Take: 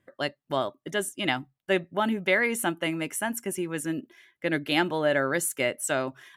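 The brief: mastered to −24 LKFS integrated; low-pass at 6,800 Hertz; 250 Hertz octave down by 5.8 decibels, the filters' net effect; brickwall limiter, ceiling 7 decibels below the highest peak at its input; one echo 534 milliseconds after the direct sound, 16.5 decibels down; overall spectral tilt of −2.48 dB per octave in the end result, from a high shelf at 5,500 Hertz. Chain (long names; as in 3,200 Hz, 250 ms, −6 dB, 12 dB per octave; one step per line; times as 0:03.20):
low-pass filter 6,800 Hz
parametric band 250 Hz −8.5 dB
high-shelf EQ 5,500 Hz +9 dB
brickwall limiter −16.5 dBFS
single-tap delay 534 ms −16.5 dB
level +6 dB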